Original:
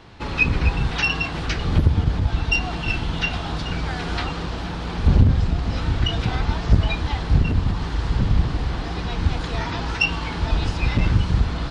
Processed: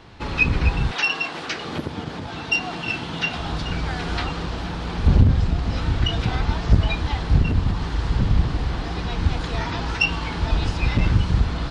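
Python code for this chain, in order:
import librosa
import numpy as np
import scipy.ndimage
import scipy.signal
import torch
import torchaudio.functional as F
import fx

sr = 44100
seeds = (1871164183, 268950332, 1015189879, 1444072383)

y = fx.highpass(x, sr, hz=fx.line((0.91, 380.0), (3.37, 140.0)), slope=12, at=(0.91, 3.37), fade=0.02)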